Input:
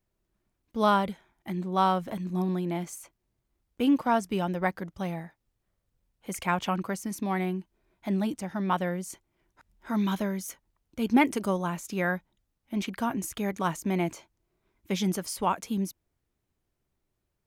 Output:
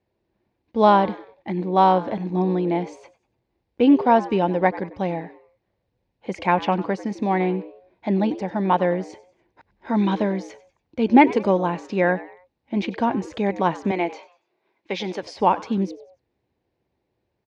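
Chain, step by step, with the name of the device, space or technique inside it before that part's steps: 13.91–15.23 weighting filter A; frequency-shifting delay pedal into a guitar cabinet (frequency-shifting echo 95 ms, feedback 38%, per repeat +120 Hz, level -18 dB; speaker cabinet 81–4300 Hz, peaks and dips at 160 Hz -4 dB, 340 Hz +3 dB, 500 Hz +6 dB, 840 Hz +5 dB, 1300 Hz -9 dB, 3200 Hz -5 dB); gain +7 dB

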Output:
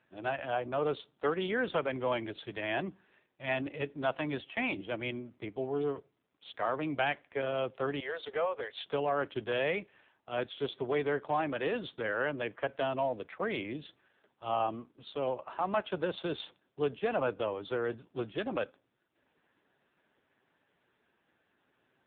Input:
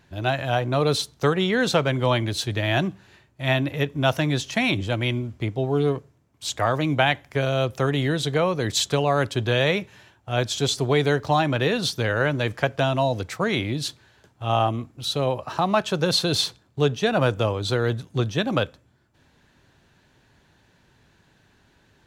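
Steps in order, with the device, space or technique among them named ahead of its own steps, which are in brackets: 4.18–4.83 dynamic EQ 970 Hz, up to +4 dB, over -48 dBFS, Q 4.6; 8–8.84 steep high-pass 400 Hz 96 dB/oct; telephone (BPF 260–3300 Hz; soft clip -12 dBFS, distortion -22 dB; gain -7 dB; AMR-NB 5.9 kbps 8000 Hz)

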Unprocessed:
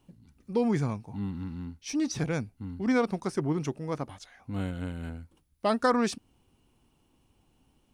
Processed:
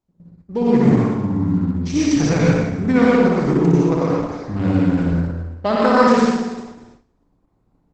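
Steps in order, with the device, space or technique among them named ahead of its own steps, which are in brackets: Wiener smoothing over 15 samples; 4.93–5.66 HPF 83 Hz 12 dB/oct; dynamic EQ 5800 Hz, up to -6 dB, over -57 dBFS, Q 3; flutter echo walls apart 10.1 m, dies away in 1.1 s; speakerphone in a meeting room (reverb RT60 0.70 s, pre-delay 85 ms, DRR -4 dB; speakerphone echo 0.13 s, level -12 dB; AGC gain up to 10 dB; gate -44 dBFS, range -14 dB; Opus 12 kbps 48000 Hz)

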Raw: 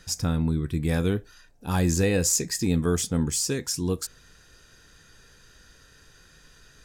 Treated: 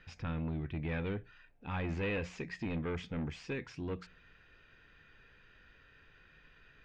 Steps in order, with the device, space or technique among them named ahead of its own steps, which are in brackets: overdriven synthesiser ladder filter (soft clip -23.5 dBFS, distortion -10 dB; ladder low-pass 2900 Hz, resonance 50%); notches 60/120/180 Hz; gain +1.5 dB

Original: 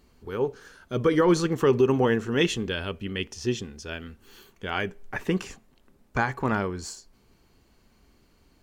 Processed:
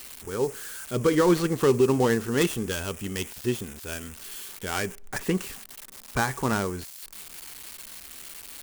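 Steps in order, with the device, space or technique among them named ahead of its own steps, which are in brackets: budget class-D amplifier (switching dead time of 0.11 ms; switching spikes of -24 dBFS)

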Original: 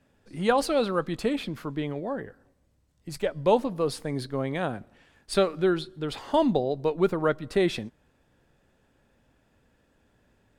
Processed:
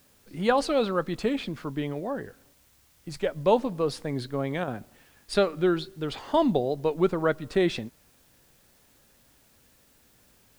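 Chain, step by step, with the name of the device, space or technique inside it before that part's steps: worn cassette (LPF 8000 Hz; wow and flutter; level dips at 4.64, 35 ms -6 dB; white noise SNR 34 dB)

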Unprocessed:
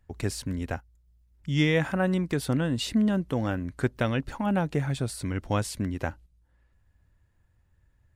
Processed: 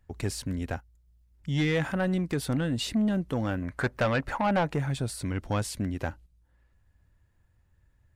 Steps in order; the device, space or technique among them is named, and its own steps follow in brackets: 3.62–4.73 band shelf 1100 Hz +9.5 dB 2.5 oct; saturation between pre-emphasis and de-emphasis (high shelf 9700 Hz +11 dB; soft clip -19.5 dBFS, distortion -11 dB; high shelf 9700 Hz -11 dB)

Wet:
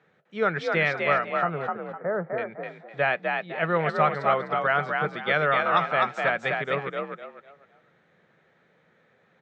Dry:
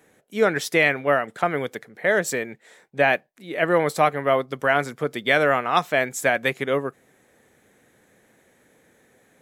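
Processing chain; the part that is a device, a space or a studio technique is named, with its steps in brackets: 1.42–2.38 inverse Chebyshev low-pass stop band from 6800 Hz, stop band 80 dB; frequency-shifting delay pedal into a guitar cabinet (frequency-shifting echo 0.253 s, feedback 30%, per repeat +47 Hz, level -3.5 dB; speaker cabinet 93–4300 Hz, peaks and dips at 160 Hz +9 dB, 280 Hz -10 dB, 1300 Hz +8 dB); gain -6 dB

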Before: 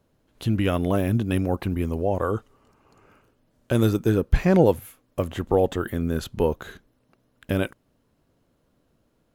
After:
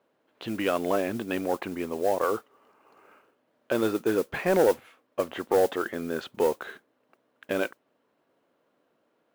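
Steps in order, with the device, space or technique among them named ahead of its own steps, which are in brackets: carbon microphone (BPF 400–2900 Hz; soft clip -14.5 dBFS, distortion -17 dB; modulation noise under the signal 20 dB); gain +2 dB

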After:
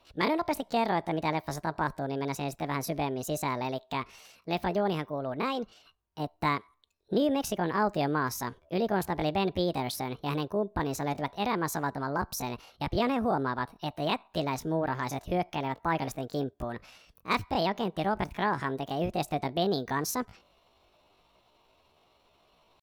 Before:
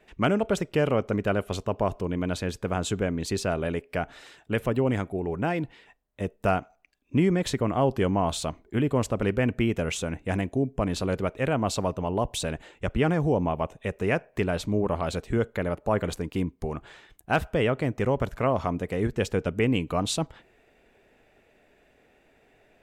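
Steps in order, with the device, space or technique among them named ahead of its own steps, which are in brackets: chipmunk voice (pitch shift +7.5 st); gain -4 dB

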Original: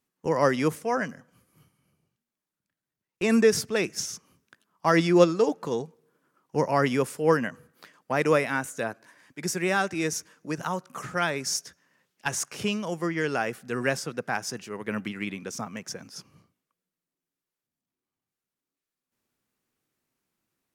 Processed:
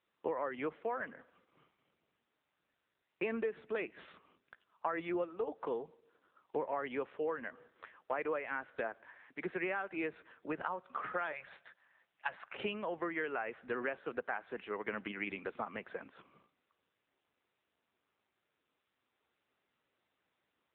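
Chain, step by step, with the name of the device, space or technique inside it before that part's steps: 11.32–12.54 Chebyshev band-stop 190–520 Hz, order 3; voicemail (BPF 380–2600 Hz; compressor 8:1, threshold -34 dBFS, peak gain reduction 19.5 dB; gain +1 dB; AMR-NB 7.95 kbps 8000 Hz)

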